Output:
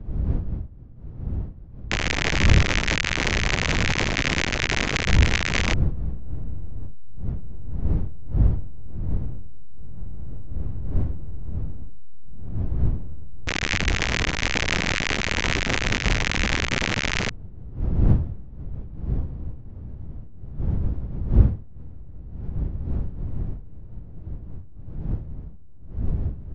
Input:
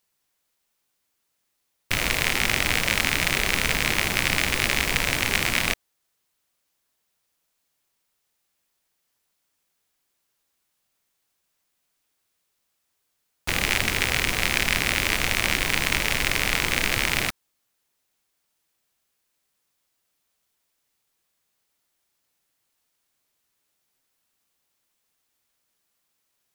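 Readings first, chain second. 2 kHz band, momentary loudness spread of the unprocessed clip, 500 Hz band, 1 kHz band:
-1.5 dB, 3 LU, +2.5 dB, 0.0 dB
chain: level-crossing sampler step -17.5 dBFS; wind noise 87 Hz -25 dBFS; downsampling 16000 Hz; gain -1 dB

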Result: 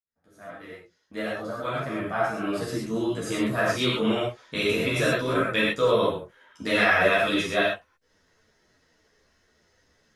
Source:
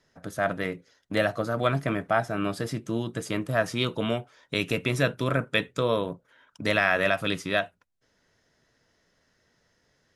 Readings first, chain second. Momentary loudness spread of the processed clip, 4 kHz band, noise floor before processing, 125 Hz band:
15 LU, +3.0 dB, -70 dBFS, -3.0 dB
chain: opening faded in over 3.35 s; non-linear reverb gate 0.15 s flat, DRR -5.5 dB; ensemble effect

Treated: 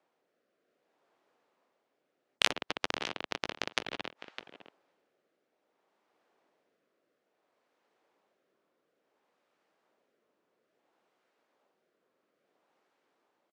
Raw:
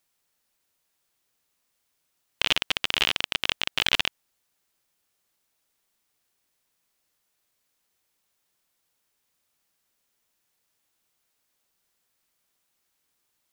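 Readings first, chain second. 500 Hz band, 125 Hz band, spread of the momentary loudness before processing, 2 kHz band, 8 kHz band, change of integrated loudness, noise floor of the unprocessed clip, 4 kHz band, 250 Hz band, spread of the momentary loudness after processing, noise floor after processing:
-1.0 dB, -8.0 dB, 3 LU, -8.5 dB, -6.0 dB, -9.5 dB, -76 dBFS, -11.0 dB, -2.5 dB, 17 LU, -81 dBFS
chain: low-pass opened by the level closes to 460 Hz, open at -26 dBFS; weighting filter A; treble ducked by the level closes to 320 Hz, closed at -24 dBFS; RIAA curve recording; rotary speaker horn 0.6 Hz; echo 0.607 s -23 dB; spectral compressor 2:1; gain +4 dB

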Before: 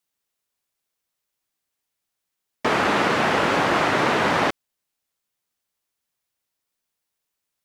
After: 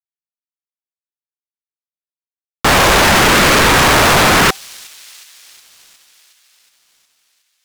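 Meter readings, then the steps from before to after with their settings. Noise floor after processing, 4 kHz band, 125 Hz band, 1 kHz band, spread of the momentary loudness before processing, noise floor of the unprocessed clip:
under -85 dBFS, +15.5 dB, +13.5 dB, +9.0 dB, 4 LU, -82 dBFS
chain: fuzz box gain 44 dB, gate -47 dBFS; thin delay 0.364 s, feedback 65%, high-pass 4000 Hz, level -18 dB; ring modulator with a swept carrier 540 Hz, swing 55%, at 0.86 Hz; gain +7 dB

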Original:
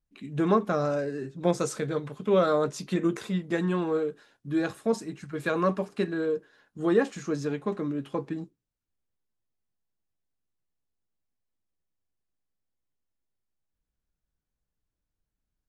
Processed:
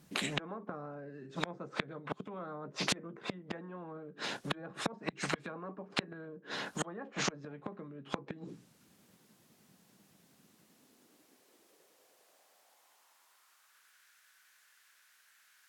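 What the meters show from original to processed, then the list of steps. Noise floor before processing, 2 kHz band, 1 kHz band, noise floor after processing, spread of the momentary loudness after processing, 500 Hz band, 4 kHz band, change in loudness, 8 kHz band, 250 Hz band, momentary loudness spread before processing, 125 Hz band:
under -85 dBFS, -2.5 dB, -9.0 dB, -68 dBFS, 11 LU, -16.5 dB, +4.5 dB, -11.5 dB, -0.5 dB, -14.5 dB, 9 LU, -12.0 dB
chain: treble ducked by the level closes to 1300 Hz, closed at -24 dBFS; dynamic EQ 540 Hz, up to +5 dB, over -40 dBFS, Q 5.2; flipped gate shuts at -27 dBFS, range -39 dB; high-pass sweep 180 Hz -> 1600 Hz, 10.37–14.03; spectral compressor 4:1; gain +10.5 dB

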